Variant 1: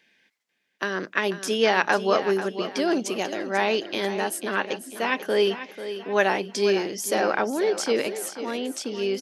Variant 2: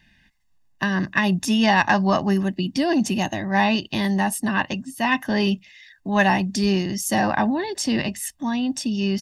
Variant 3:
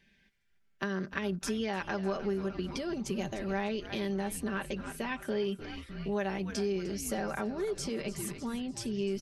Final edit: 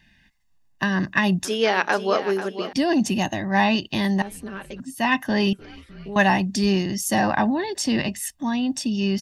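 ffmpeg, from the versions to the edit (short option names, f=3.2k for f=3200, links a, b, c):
-filter_complex "[2:a]asplit=2[a][b];[1:a]asplit=4[c][d][e][f];[c]atrim=end=1.452[g];[0:a]atrim=start=1.448:end=2.732[h];[d]atrim=start=2.728:end=4.222[i];[a]atrim=start=4.218:end=4.802[j];[e]atrim=start=4.798:end=5.532[k];[b]atrim=start=5.528:end=6.162[l];[f]atrim=start=6.158[m];[g][h]acrossfade=d=0.004:c1=hsin:c2=hsin[n];[n][i]acrossfade=d=0.004:c1=hsin:c2=hsin[o];[o][j]acrossfade=d=0.004:c1=hsin:c2=hsin[p];[p][k]acrossfade=d=0.004:c1=hsin:c2=hsin[q];[q][l]acrossfade=d=0.004:c1=hsin:c2=hsin[r];[r][m]acrossfade=d=0.004:c1=hsin:c2=hsin"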